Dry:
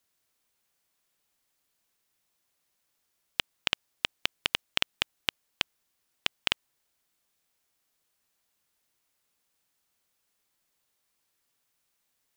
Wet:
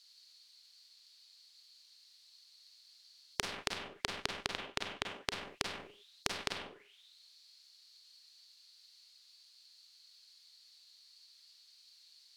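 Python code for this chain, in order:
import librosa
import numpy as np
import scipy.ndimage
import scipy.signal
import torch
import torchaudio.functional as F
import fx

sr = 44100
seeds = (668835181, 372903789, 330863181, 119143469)

y = fx.auto_wah(x, sr, base_hz=410.0, top_hz=4500.0, q=9.5, full_db=-35.5, direction='down')
y = fx.rev_schroeder(y, sr, rt60_s=0.35, comb_ms=32, drr_db=6.0)
y = fx.spectral_comp(y, sr, ratio=10.0)
y = F.gain(torch.from_numpy(y), 11.0).numpy()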